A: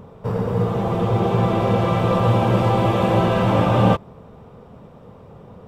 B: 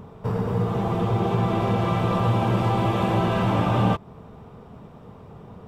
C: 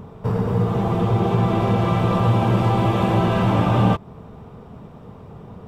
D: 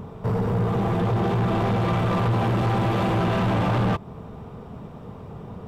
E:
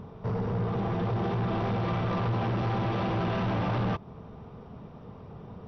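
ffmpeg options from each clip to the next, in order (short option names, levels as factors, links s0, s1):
-af "equalizer=f=530:t=o:w=0.22:g=-8.5,acompressor=threshold=0.0631:ratio=1.5"
-af "lowshelf=f=370:g=2.5,volume=1.26"
-af "asoftclip=type=tanh:threshold=0.1,volume=1.19"
-af "volume=0.473" -ar 48000 -c:a mp2 -b:a 48k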